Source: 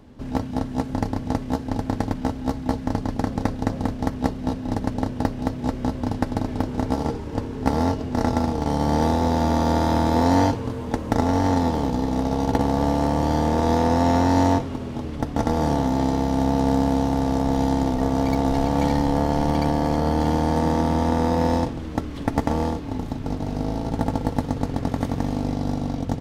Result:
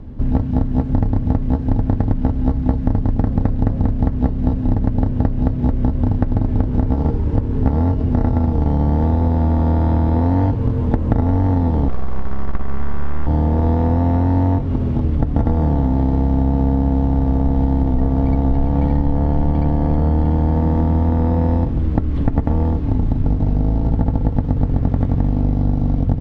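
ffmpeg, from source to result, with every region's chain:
-filter_complex "[0:a]asettb=1/sr,asplit=3[s0][s1][s2];[s0]atrim=end=11.884[s3];[s1]atrim=start=11.88:end=13.27,asetpts=PTS-STARTPTS,afade=t=in:d=0.004:c=qsin,afade=t=out:st=1.386:d=0.004:c=qsin,highpass=300,aeval=exprs='abs(val(0))':c=same[s4];[s2]atrim=start=13.266[s5];[s3][s4]acrossfade=d=0.004:c1=hsin:c2=qsin[s6];[s6][s5]acrossfade=d=0.004:c1=qsin:c2=hsin,acrossover=split=3800[s7][s8];[s8]acompressor=threshold=0.00282:ratio=4:attack=1:release=60[s9];[s7][s9]amix=inputs=2:normalize=0,aemphasis=mode=reproduction:type=riaa,acompressor=threshold=0.178:ratio=6,volume=1.41"

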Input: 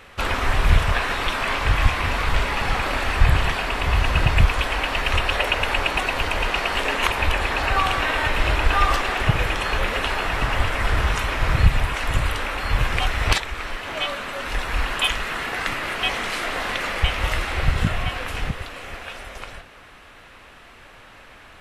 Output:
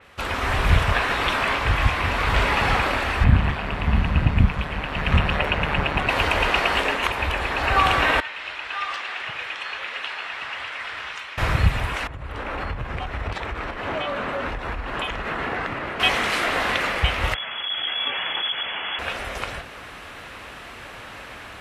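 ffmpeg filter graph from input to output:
-filter_complex "[0:a]asettb=1/sr,asplit=3[s0][s1][s2];[s0]atrim=end=3.244[s3];[s1]atrim=start=3.24:end=6.09,asetpts=PTS-STARTPTS,afade=t=in:d=0.004:c=qsin,afade=t=out:st=2.846:d=0.004:c=qsin,bass=f=250:g=7,treble=f=4000:g=-9,tremolo=f=150:d=0.621[s4];[s2]atrim=start=6.086[s5];[s3][s4]acrossfade=d=0.004:c1=hsin:c2=qsin[s6];[s6][s5]acrossfade=d=0.004:c1=qsin:c2=hsin,asettb=1/sr,asplit=3[s7][s8][s9];[s7]atrim=end=8.204[s10];[s8]atrim=start=8.2:end=11.38,asetpts=PTS-STARTPTS,afade=t=in:d=0.004:c=qsin,afade=t=out:st=3.176:d=0.004:c=qsin,lowpass=2900,aderivative[s11];[s9]atrim=start=11.376[s12];[s10][s11]acrossfade=d=0.004:c1=hsin:c2=qsin[s13];[s13][s12]acrossfade=d=0.004:c1=qsin:c2=hsin,asettb=1/sr,asplit=3[s14][s15][s16];[s14]atrim=end=12.074[s17];[s15]atrim=start=12.07:end=16,asetpts=PTS-STARTPTS,afade=t=in:d=0.004:c=qsin,afade=t=out:st=3.926:d=0.004:c=qsin,lowpass=f=1000:p=1,acompressor=threshold=0.0355:ratio=12:attack=3.2:release=140:knee=1:detection=peak[s18];[s16]atrim=start=15.996[s19];[s17][s18]acrossfade=d=0.004:c1=hsin:c2=qsin[s20];[s20][s19]acrossfade=d=0.004:c1=qsin:c2=hsin,asettb=1/sr,asplit=3[s21][s22][s23];[s21]atrim=end=17.344[s24];[s22]atrim=start=17.34:end=18.99,asetpts=PTS-STARTPTS,afade=t=in:d=0.004:c=qsin,afade=t=out:st=1.646:d=0.004:c=qsin,asoftclip=type=hard:threshold=0.112,acompressor=threshold=0.0355:ratio=5:attack=3.2:release=140:knee=1:detection=peak,lowpass=f=2900:t=q:w=0.5098,lowpass=f=2900:t=q:w=0.6013,lowpass=f=2900:t=q:w=0.9,lowpass=f=2900:t=q:w=2.563,afreqshift=-3400[s25];[s23]atrim=start=18.986[s26];[s24][s25]acrossfade=d=0.004:c1=hsin:c2=qsin[s27];[s27][s26]acrossfade=d=0.004:c1=qsin:c2=hsin,highpass=48,dynaudnorm=f=270:g=3:m=3.76,adynamicequalizer=threshold=0.0251:dfrequency=4200:dqfactor=0.7:tfrequency=4200:tqfactor=0.7:attack=5:release=100:ratio=0.375:range=2.5:mode=cutabove:tftype=highshelf,volume=0.631"

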